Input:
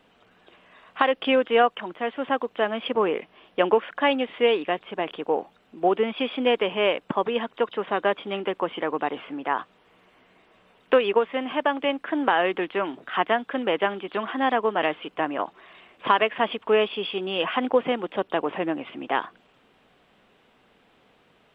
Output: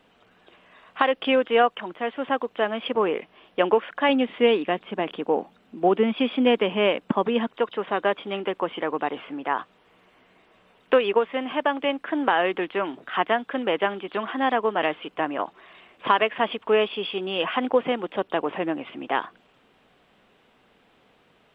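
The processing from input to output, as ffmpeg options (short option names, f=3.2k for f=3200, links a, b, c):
-filter_complex "[0:a]asettb=1/sr,asplit=3[a][b][c];[a]atrim=end=4.094[d];[b]atrim=start=4.09:end=7.47,asetpts=PTS-STARTPTS,afade=t=in:d=0.004:c=qsin,afade=t=out:st=3.376:d=0.004:c=qsin,equalizer=f=220:w=1.5:g=7.5[e];[c]atrim=start=7.466[f];[d][e]acrossfade=d=0.004:c1=hsin:c2=qsin[g];[g][f]acrossfade=d=0.004:c1=qsin:c2=hsin"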